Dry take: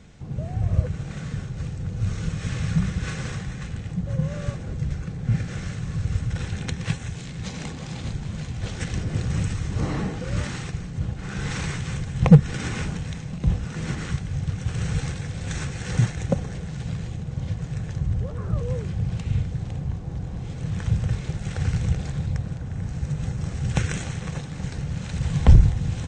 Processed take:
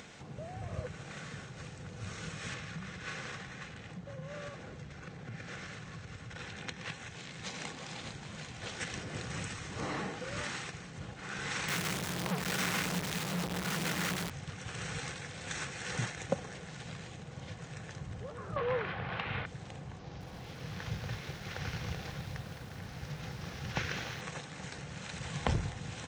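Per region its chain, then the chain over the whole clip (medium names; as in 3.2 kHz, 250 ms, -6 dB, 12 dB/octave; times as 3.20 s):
2.54–7.31 s: distance through air 53 m + compression 2:1, threshold -28 dBFS
11.68–14.30 s: compression 3:1, threshold -21 dBFS + companded quantiser 2-bit + peaking EQ 180 Hz +12 dB 0.23 oct
18.56–19.46 s: low-pass 3.9 kHz 24 dB/octave + peaking EQ 1.3 kHz +14.5 dB 2.8 oct
19.99–24.21 s: CVSD coder 32 kbps + bass shelf 72 Hz +6.5 dB + bit-crushed delay 214 ms, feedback 55%, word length 7-bit, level -11.5 dB
whole clip: high-pass 800 Hz 6 dB/octave; treble shelf 4.7 kHz -5 dB; upward compressor, threshold -42 dBFS; trim -1 dB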